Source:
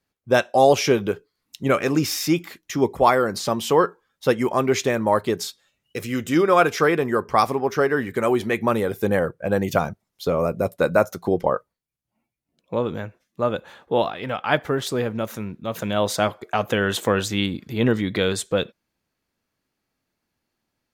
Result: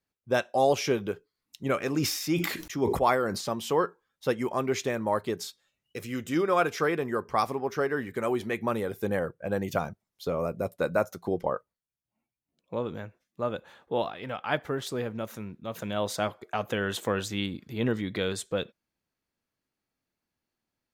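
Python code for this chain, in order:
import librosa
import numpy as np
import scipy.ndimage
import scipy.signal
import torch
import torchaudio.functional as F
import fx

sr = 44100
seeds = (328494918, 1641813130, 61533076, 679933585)

y = fx.sustainer(x, sr, db_per_s=54.0, at=(1.92, 3.41))
y = F.gain(torch.from_numpy(y), -8.0).numpy()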